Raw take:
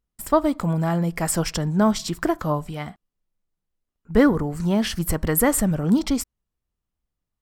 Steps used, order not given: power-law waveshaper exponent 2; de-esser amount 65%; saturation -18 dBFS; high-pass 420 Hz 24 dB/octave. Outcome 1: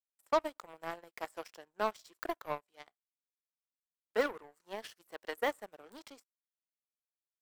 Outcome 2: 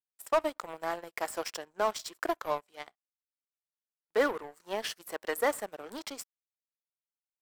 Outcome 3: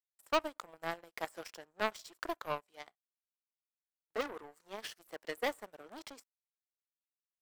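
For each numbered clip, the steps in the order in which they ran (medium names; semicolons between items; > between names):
de-esser > high-pass > power-law waveshaper > saturation; high-pass > saturation > power-law waveshaper > de-esser; saturation > de-esser > high-pass > power-law waveshaper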